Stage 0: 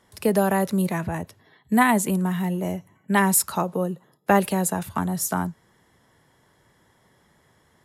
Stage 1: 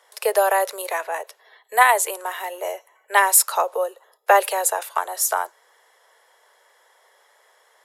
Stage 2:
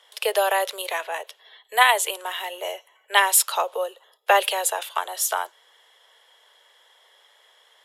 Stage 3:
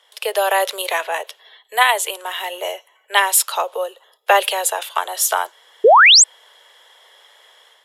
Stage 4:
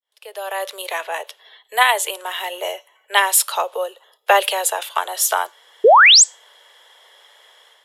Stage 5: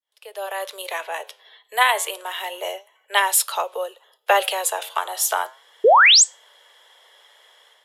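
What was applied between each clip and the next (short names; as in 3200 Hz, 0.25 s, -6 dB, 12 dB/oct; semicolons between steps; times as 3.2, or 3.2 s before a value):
steep high-pass 460 Hz 48 dB/oct; gain +5.5 dB
bell 3200 Hz +14.5 dB 0.69 oct; gain -3.5 dB
AGC gain up to 7.5 dB; painted sound rise, 5.84–6.24, 390–8500 Hz -8 dBFS
opening faded in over 1.52 s; resonator 290 Hz, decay 0.29 s, harmonics all, mix 30%; gain +2.5 dB
flange 0.31 Hz, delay 3 ms, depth 8 ms, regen +88%; gain +1.5 dB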